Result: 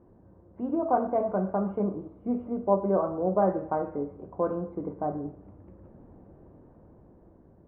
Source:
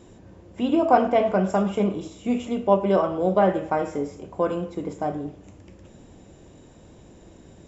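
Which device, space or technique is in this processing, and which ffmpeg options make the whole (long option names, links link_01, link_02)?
action camera in a waterproof case: -filter_complex "[0:a]asettb=1/sr,asplit=3[link_01][link_02][link_03];[link_01]atrim=end=1.844[link_04];[link_02]atrim=start=1.84:end=3.42,asetpts=PTS-STARTPTS,afade=type=in:duration=0.004:curve=qsin,afade=type=out:start_time=1.576:duration=0.004:curve=qsin,equalizer=frequency=3200:width=1.1:gain=-5.5[link_05];[link_03]atrim=start=3.416[link_06];[link_04][link_05]acrossfade=duration=0.004:curve1=hsin:curve2=qsin[link_07];[link_07][link_06]acrossfade=duration=0.004:curve1=qsin:curve2=hsin,lowpass=frequency=1300:width=0.5412,lowpass=frequency=1300:width=1.3066,dynaudnorm=framelen=340:gausssize=7:maxgain=5dB,volume=-8dB" -ar 24000 -c:a aac -b:a 64k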